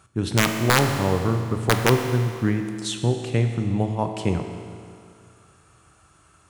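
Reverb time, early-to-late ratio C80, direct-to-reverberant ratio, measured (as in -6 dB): 2.3 s, 7.5 dB, 5.0 dB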